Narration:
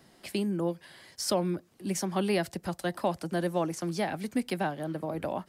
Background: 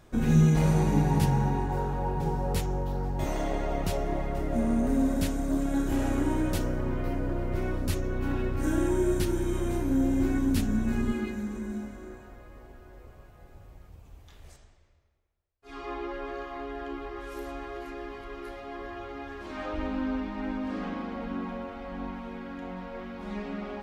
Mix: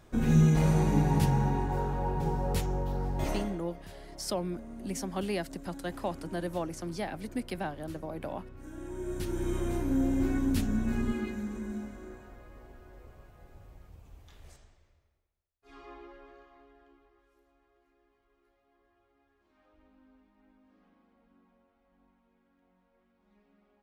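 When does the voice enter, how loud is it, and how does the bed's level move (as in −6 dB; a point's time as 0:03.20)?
3.00 s, −5.0 dB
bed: 0:03.35 −1.5 dB
0:03.64 −18.5 dB
0:08.71 −18.5 dB
0:09.47 −2.5 dB
0:15.15 −2.5 dB
0:17.45 −32 dB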